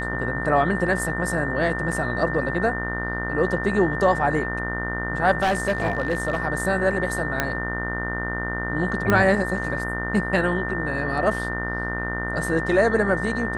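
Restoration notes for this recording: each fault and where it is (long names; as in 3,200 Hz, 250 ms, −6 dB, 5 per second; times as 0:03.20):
mains buzz 60 Hz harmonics 33 −30 dBFS
whistle 1,800 Hz −29 dBFS
0:01.92: drop-out 4.2 ms
0:05.40–0:06.38: clipping −17 dBFS
0:07.40: click −6 dBFS
0:09.10: click −7 dBFS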